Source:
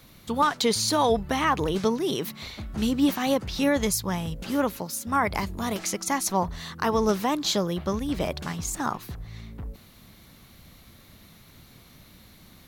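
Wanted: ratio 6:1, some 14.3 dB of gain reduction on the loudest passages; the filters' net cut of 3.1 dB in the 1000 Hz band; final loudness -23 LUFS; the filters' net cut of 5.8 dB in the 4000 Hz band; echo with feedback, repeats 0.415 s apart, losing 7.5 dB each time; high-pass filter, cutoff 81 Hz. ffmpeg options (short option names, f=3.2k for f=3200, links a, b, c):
-af "highpass=81,equalizer=f=1k:t=o:g=-3.5,equalizer=f=4k:t=o:g=-7,acompressor=threshold=-34dB:ratio=6,aecho=1:1:415|830|1245|1660|2075:0.422|0.177|0.0744|0.0312|0.0131,volume=14dB"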